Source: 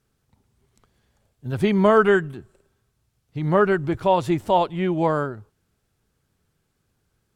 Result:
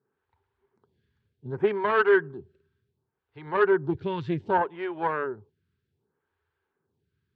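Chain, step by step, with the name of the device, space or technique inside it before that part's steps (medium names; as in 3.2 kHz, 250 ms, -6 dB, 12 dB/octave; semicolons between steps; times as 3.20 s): vibe pedal into a guitar amplifier (lamp-driven phase shifter 0.66 Hz; valve stage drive 15 dB, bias 0.65; cabinet simulation 81–4000 Hz, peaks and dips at 84 Hz +9 dB, 150 Hz +4 dB, 400 Hz +10 dB, 630 Hz -5 dB, 930 Hz +8 dB, 1.6 kHz +7 dB); trim -3 dB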